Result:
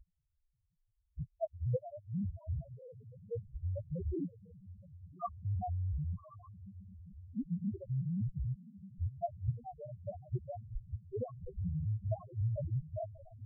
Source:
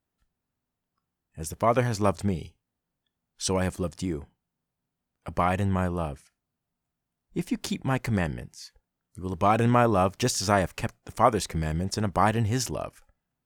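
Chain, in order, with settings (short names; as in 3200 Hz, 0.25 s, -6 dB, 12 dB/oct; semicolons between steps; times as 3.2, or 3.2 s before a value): local time reversal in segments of 0.237 s; elliptic low-pass 1700 Hz, stop band 50 dB; low shelf 82 Hz +7 dB; level quantiser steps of 22 dB; flipped gate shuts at -21 dBFS, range -30 dB; diffused feedback echo 1.162 s, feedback 59%, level -15 dB; loudest bins only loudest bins 1; gain +17.5 dB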